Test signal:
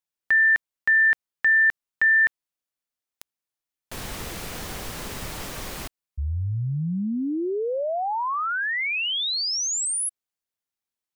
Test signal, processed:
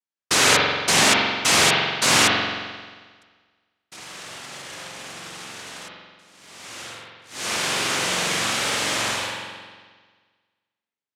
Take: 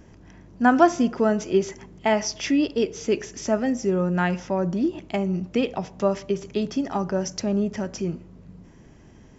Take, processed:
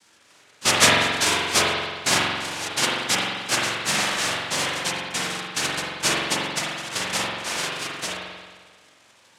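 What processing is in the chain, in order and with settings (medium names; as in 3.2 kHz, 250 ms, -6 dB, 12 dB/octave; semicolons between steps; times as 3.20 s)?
mistuned SSB -240 Hz 180–3200 Hz; noise-vocoded speech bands 1; spring tank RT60 1.5 s, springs 44 ms, chirp 55 ms, DRR -4 dB; trim -1 dB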